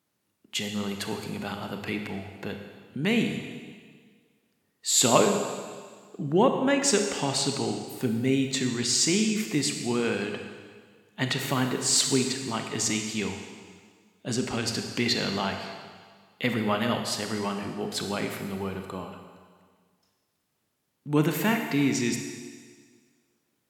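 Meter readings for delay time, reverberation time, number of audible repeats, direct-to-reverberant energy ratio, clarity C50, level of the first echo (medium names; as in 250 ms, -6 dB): no echo, 1.7 s, no echo, 4.5 dB, 5.5 dB, no echo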